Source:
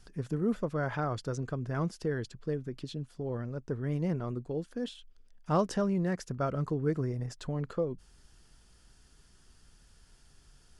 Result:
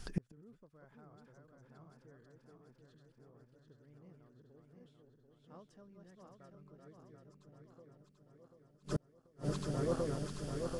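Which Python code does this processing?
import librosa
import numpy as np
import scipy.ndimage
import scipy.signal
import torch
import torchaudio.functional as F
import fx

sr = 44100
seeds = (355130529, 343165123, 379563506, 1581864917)

y = fx.reverse_delay_fb(x, sr, ms=369, feedback_pct=75, wet_db=-3)
y = fx.gate_flip(y, sr, shuts_db=-31.0, range_db=-38)
y = F.gain(torch.from_numpy(y), 8.0).numpy()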